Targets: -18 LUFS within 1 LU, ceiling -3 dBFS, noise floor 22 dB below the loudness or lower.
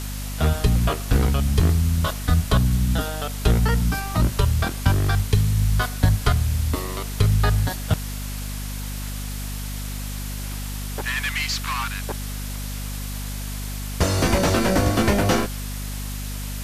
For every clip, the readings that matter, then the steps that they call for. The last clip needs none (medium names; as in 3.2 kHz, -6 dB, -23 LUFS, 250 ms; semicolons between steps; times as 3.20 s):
hum 50 Hz; highest harmonic 250 Hz; hum level -28 dBFS; noise floor -30 dBFS; noise floor target -46 dBFS; loudness -23.5 LUFS; peak level -4.5 dBFS; loudness target -18.0 LUFS
-> de-hum 50 Hz, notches 5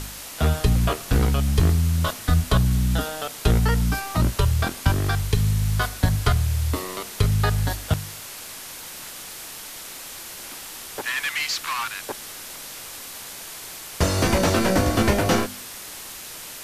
hum not found; noise floor -38 dBFS; noise floor target -45 dBFS
-> noise print and reduce 7 dB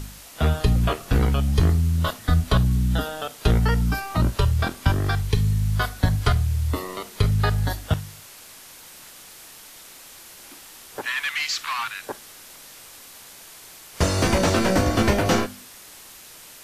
noise floor -45 dBFS; loudness -23.0 LUFS; peak level -5.0 dBFS; loudness target -18.0 LUFS
-> trim +5 dB; peak limiter -3 dBFS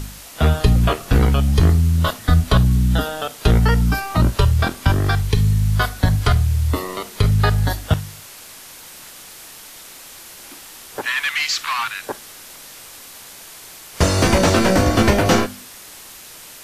loudness -18.0 LUFS; peak level -3.0 dBFS; noise floor -40 dBFS